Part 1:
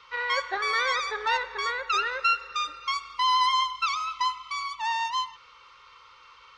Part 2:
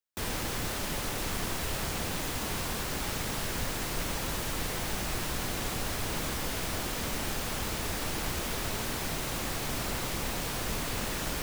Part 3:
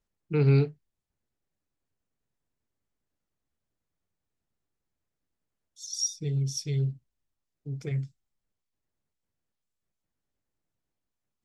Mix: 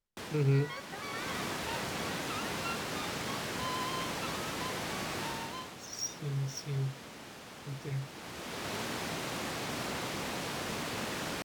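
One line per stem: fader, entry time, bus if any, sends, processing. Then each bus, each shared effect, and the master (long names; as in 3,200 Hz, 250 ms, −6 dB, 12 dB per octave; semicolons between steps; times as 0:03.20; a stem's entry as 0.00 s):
−16.5 dB, 0.40 s, no send, no processing
−1.0 dB, 0.00 s, no send, high-pass filter 140 Hz 12 dB per octave; high-shelf EQ 11,000 Hz −12 dB; automatic ducking −11 dB, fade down 0.50 s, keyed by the third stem
−6.5 dB, 0.00 s, no send, no processing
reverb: not used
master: linearly interpolated sample-rate reduction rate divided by 2×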